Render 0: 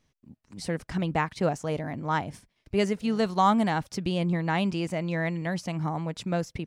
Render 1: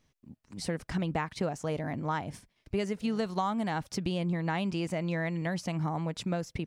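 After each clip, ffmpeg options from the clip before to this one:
ffmpeg -i in.wav -af "acompressor=threshold=-27dB:ratio=6" out.wav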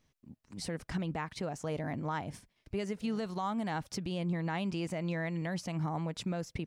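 ffmpeg -i in.wav -af "alimiter=limit=-23dB:level=0:latency=1:release=92,volume=-2dB" out.wav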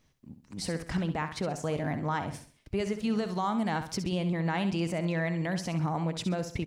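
ffmpeg -i in.wav -af "aecho=1:1:66|132|198|264:0.316|0.114|0.041|0.0148,volume=4.5dB" out.wav

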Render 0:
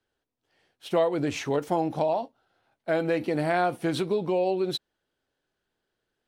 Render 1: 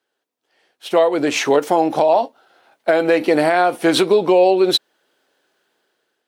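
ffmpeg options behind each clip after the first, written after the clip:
ffmpeg -i in.wav -af "highpass=330,dynaudnorm=framelen=510:gausssize=5:maxgain=13dB,alimiter=limit=-10.5dB:level=0:latency=1:release=366,volume=6dB" out.wav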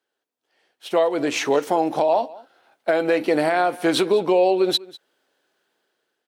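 ffmpeg -i in.wav -af "aecho=1:1:198:0.0891,volume=-4.5dB" out.wav

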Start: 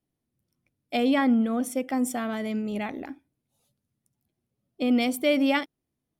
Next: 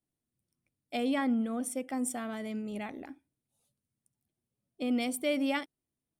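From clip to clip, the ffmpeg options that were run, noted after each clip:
ffmpeg -i in.wav -af "equalizer=frequency=8900:width=2.8:gain=9,volume=-7.5dB" out.wav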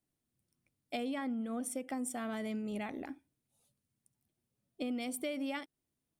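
ffmpeg -i in.wav -af "acompressor=threshold=-37dB:ratio=6,volume=2dB" out.wav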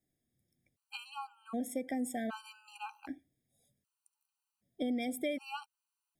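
ffmpeg -i in.wav -af "afftfilt=real='re*gt(sin(2*PI*0.65*pts/sr)*(1-2*mod(floor(b*sr/1024/790),2)),0)':imag='im*gt(sin(2*PI*0.65*pts/sr)*(1-2*mod(floor(b*sr/1024/790),2)),0)':win_size=1024:overlap=0.75,volume=3dB" out.wav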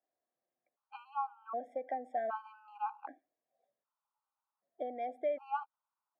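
ffmpeg -i in.wav -af "asuperpass=centerf=880:order=4:qfactor=1.3,volume=7.5dB" out.wav

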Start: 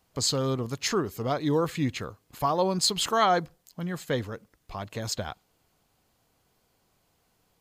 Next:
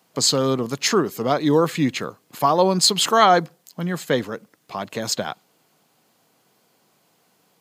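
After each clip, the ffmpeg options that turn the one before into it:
ffmpeg -i in.wav -af "highpass=frequency=150:width=0.5412,highpass=frequency=150:width=1.3066,volume=8dB" out.wav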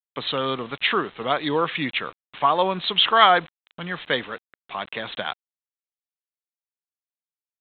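ffmpeg -i in.wav -af "tiltshelf=frequency=800:gain=-8.5,aresample=8000,acrusher=bits=6:mix=0:aa=0.000001,aresample=44100,volume=-2dB" out.wav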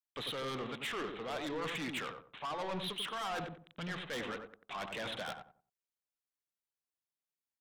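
ffmpeg -i in.wav -filter_complex "[0:a]areverse,acompressor=threshold=-26dB:ratio=6,areverse,asoftclip=type=tanh:threshold=-33.5dB,asplit=2[link_01][link_02];[link_02]adelay=91,lowpass=frequency=1000:poles=1,volume=-4dB,asplit=2[link_03][link_04];[link_04]adelay=91,lowpass=frequency=1000:poles=1,volume=0.3,asplit=2[link_05][link_06];[link_06]adelay=91,lowpass=frequency=1000:poles=1,volume=0.3,asplit=2[link_07][link_08];[link_08]adelay=91,lowpass=frequency=1000:poles=1,volume=0.3[link_09];[link_01][link_03][link_05][link_07][link_09]amix=inputs=5:normalize=0,volume=-2.5dB" out.wav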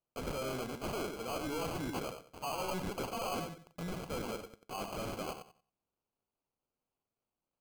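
ffmpeg -i in.wav -af "acrusher=samples=24:mix=1:aa=0.000001,volume=1dB" out.wav

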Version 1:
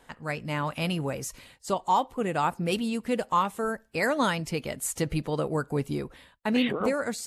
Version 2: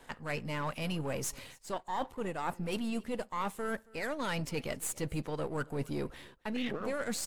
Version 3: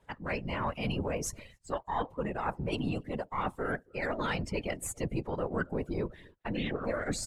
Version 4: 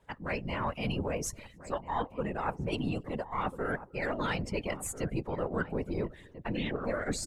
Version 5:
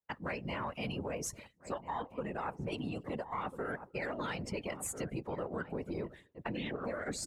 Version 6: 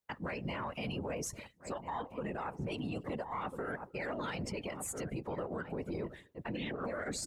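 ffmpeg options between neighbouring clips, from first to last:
ffmpeg -i in.wav -af "aeval=exprs='if(lt(val(0),0),0.447*val(0),val(0))':channel_layout=same,areverse,acompressor=threshold=-35dB:ratio=10,areverse,aecho=1:1:274:0.0668,volume=3.5dB" out.wav
ffmpeg -i in.wav -af "highshelf=frequency=9200:gain=-4.5,afftdn=noise_reduction=17:noise_floor=-47,afftfilt=real='hypot(re,im)*cos(2*PI*random(0))':imag='hypot(re,im)*sin(2*PI*random(1))':win_size=512:overlap=0.75,volume=8.5dB" out.wav
ffmpeg -i in.wav -filter_complex "[0:a]asplit=2[link_01][link_02];[link_02]adelay=1341,volume=-13dB,highshelf=frequency=4000:gain=-30.2[link_03];[link_01][link_03]amix=inputs=2:normalize=0" out.wav
ffmpeg -i in.wav -af "highpass=frequency=110:poles=1,agate=range=-33dB:threshold=-42dB:ratio=3:detection=peak,acompressor=threshold=-37dB:ratio=6,volume=2dB" out.wav
ffmpeg -i in.wav -af "alimiter=level_in=9.5dB:limit=-24dB:level=0:latency=1:release=55,volume=-9.5dB,volume=3.5dB" out.wav

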